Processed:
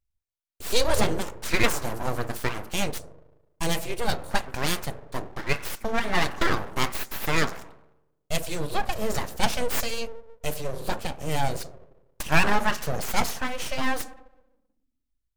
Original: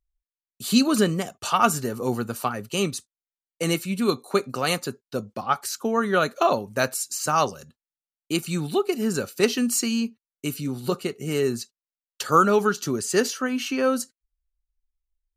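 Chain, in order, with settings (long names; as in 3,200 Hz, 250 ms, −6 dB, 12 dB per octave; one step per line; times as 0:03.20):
feedback delay network reverb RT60 0.74 s, low-frequency decay 1.55×, high-frequency decay 0.3×, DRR 10.5 dB
full-wave rectification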